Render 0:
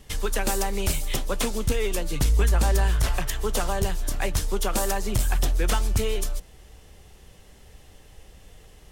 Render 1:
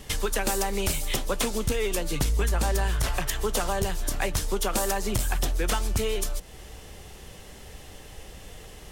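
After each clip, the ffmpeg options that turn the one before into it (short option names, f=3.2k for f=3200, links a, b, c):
-af "lowshelf=f=120:g=-5,acompressor=threshold=-37dB:ratio=2,volume=8dB"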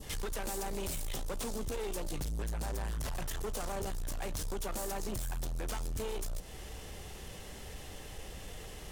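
-af "adynamicequalizer=threshold=0.00447:dfrequency=2200:dqfactor=0.91:tfrequency=2200:tqfactor=0.91:attack=5:release=100:ratio=0.375:range=3.5:mode=cutabove:tftype=bell,alimiter=limit=-22dB:level=0:latency=1:release=14,asoftclip=type=tanh:threshold=-32.5dB,volume=-1dB"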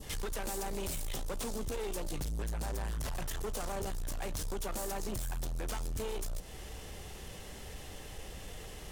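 -af anull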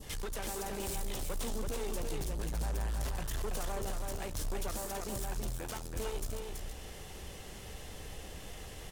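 -af "aecho=1:1:329:0.631,volume=-1.5dB"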